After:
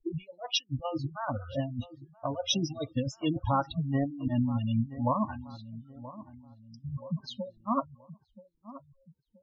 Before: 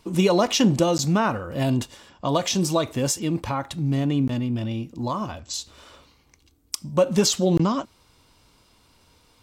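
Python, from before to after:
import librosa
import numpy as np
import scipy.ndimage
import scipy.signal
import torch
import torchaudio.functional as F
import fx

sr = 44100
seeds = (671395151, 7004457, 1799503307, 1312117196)

y = fx.air_absorb(x, sr, metres=110.0)
y = fx.transient(y, sr, attack_db=-1, sustain_db=-8)
y = fx.spec_topn(y, sr, count=32)
y = fx.harmonic_tremolo(y, sr, hz=2.9, depth_pct=50, crossover_hz=560.0)
y = fx.over_compress(y, sr, threshold_db=-28.0, ratio=-0.5)
y = fx.noise_reduce_blind(y, sr, reduce_db=27)
y = fx.echo_feedback(y, sr, ms=977, feedback_pct=38, wet_db=-15.5)
y = fx.spec_gate(y, sr, threshold_db=-25, keep='strong')
y = fx.graphic_eq(y, sr, hz=(1000, 2000, 4000, 8000), db=(-5, -5, 6, 6), at=(1.25, 3.4))
y = fx.env_lowpass(y, sr, base_hz=590.0, full_db=-24.0)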